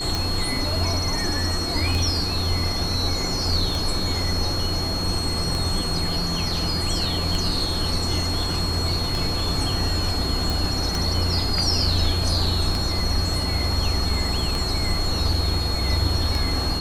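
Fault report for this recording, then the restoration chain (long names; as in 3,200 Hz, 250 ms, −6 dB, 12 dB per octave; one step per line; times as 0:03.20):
scratch tick 33 1/3 rpm
whistle 4,300 Hz −27 dBFS
0:10.50: click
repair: click removal
notch filter 4,300 Hz, Q 30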